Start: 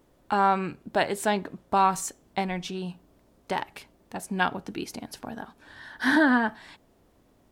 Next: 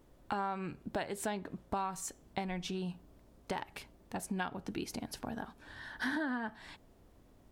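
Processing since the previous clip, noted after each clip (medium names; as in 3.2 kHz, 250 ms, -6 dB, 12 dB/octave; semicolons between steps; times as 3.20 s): bass shelf 97 Hz +9 dB; compression 5:1, threshold -31 dBFS, peak gain reduction 13.5 dB; trim -3 dB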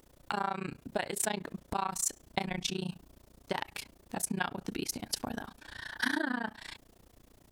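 treble shelf 2.5 kHz +9.5 dB; AM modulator 29 Hz, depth 95%; trim +5.5 dB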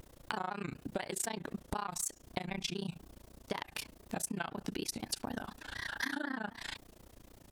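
compression 5:1, threshold -37 dBFS, peak gain reduction 11 dB; vibrato with a chosen wave square 4 Hz, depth 100 cents; trim +3 dB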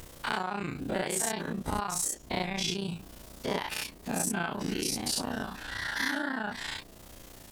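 every event in the spectrogram widened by 120 ms; tape noise reduction on one side only encoder only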